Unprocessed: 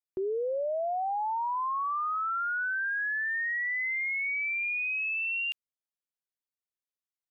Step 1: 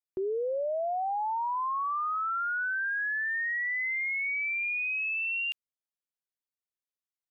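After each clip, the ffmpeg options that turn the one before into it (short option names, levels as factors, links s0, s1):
-af anull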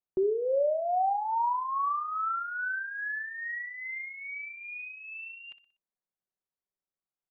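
-af "lowpass=1100,aecho=1:1:5.3:0.38,aecho=1:1:61|122|183|244:0.2|0.0898|0.0404|0.0182,volume=1.41"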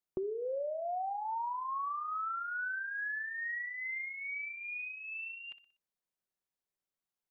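-af "acompressor=threshold=0.0178:ratio=6"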